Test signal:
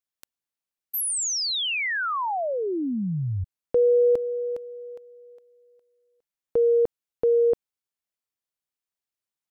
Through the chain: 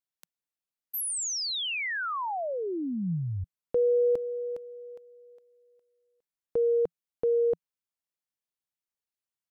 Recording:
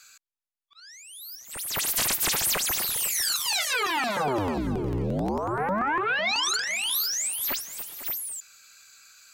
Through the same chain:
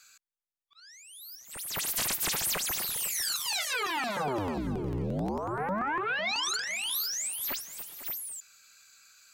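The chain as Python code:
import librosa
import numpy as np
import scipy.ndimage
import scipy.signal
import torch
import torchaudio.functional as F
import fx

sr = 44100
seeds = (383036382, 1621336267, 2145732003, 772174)

y = fx.peak_eq(x, sr, hz=170.0, db=3.5, octaves=0.35)
y = F.gain(torch.from_numpy(y), -5.0).numpy()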